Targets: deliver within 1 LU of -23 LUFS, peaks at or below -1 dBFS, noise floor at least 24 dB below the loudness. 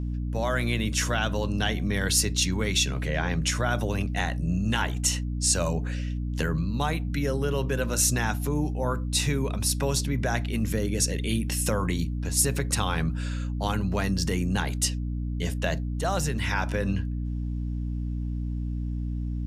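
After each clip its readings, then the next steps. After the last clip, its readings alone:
hum 60 Hz; harmonics up to 300 Hz; hum level -27 dBFS; loudness -27.0 LUFS; peak -9.0 dBFS; loudness target -23.0 LUFS
-> notches 60/120/180/240/300 Hz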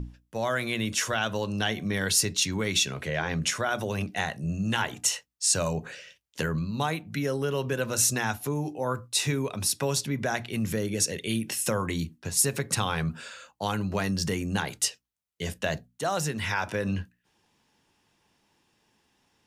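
hum none; loudness -28.0 LUFS; peak -10.5 dBFS; loudness target -23.0 LUFS
-> gain +5 dB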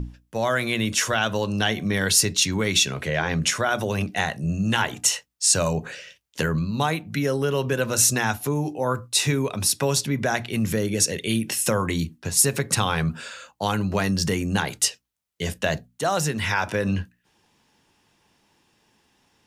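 loudness -23.0 LUFS; peak -5.5 dBFS; noise floor -69 dBFS

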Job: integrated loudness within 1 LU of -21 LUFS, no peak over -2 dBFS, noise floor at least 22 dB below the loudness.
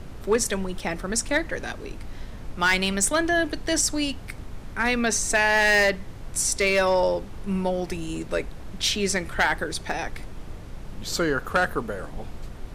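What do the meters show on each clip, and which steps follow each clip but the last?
clipped 0.3%; flat tops at -13.5 dBFS; noise floor -39 dBFS; noise floor target -46 dBFS; loudness -24.0 LUFS; peak -13.5 dBFS; loudness target -21.0 LUFS
-> clip repair -13.5 dBFS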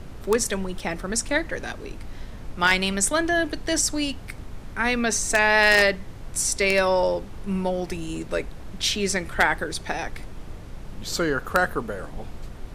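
clipped 0.0%; noise floor -39 dBFS; noise floor target -45 dBFS
-> noise print and reduce 6 dB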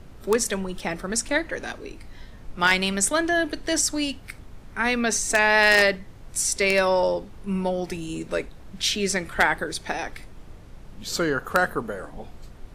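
noise floor -44 dBFS; noise floor target -45 dBFS
-> noise print and reduce 6 dB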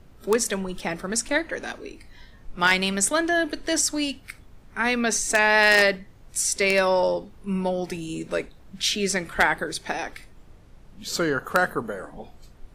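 noise floor -50 dBFS; loudness -23.0 LUFS; peak -4.5 dBFS; loudness target -21.0 LUFS
-> gain +2 dB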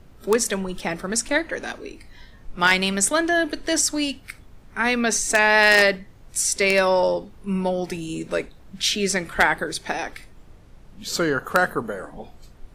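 loudness -21.0 LUFS; peak -2.5 dBFS; noise floor -48 dBFS

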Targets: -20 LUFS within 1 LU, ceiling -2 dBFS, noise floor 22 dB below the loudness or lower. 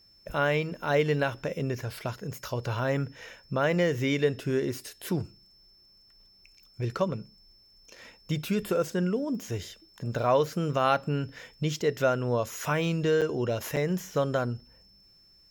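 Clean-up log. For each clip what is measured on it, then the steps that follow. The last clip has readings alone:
dropouts 2; longest dropout 7.2 ms; steady tone 5300 Hz; tone level -57 dBFS; loudness -29.0 LUFS; peak -12.0 dBFS; loudness target -20.0 LUFS
-> interpolate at 13.21/13.76, 7.2 ms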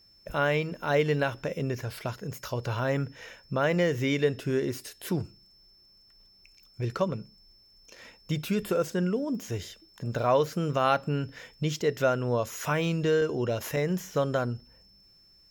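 dropouts 0; steady tone 5300 Hz; tone level -57 dBFS
-> notch 5300 Hz, Q 30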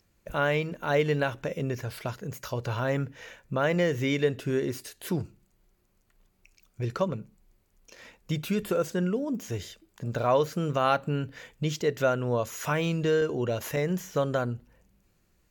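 steady tone none; loudness -29.0 LUFS; peak -11.5 dBFS; loudness target -20.0 LUFS
-> gain +9 dB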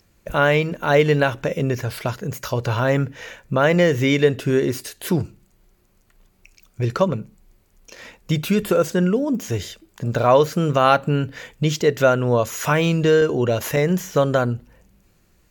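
loudness -20.0 LUFS; peak -2.5 dBFS; noise floor -60 dBFS

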